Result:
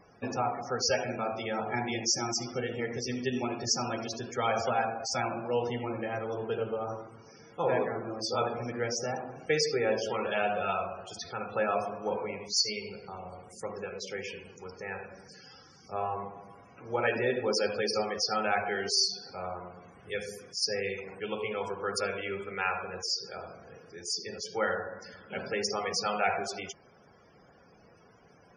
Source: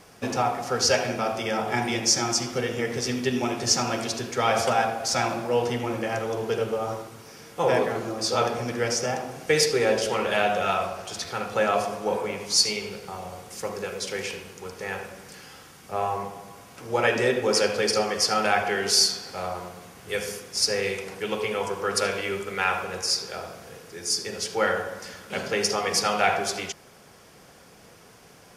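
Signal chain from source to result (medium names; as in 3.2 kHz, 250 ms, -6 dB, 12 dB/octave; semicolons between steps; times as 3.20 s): 13.37–16.01 s: peaking EQ 5.2 kHz -3 dB -> +8.5 dB 0.66 oct; loudest bins only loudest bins 64; trim -6 dB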